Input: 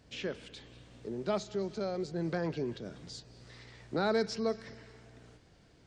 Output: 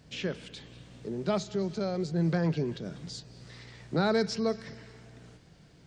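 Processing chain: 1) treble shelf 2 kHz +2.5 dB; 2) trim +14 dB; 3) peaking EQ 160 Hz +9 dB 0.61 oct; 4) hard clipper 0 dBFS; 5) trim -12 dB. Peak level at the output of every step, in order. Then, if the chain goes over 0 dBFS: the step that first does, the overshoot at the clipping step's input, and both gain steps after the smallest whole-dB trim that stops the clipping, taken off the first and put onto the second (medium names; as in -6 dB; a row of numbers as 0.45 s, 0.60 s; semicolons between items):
-18.5 dBFS, -4.5 dBFS, -3.5 dBFS, -3.5 dBFS, -15.5 dBFS; nothing clips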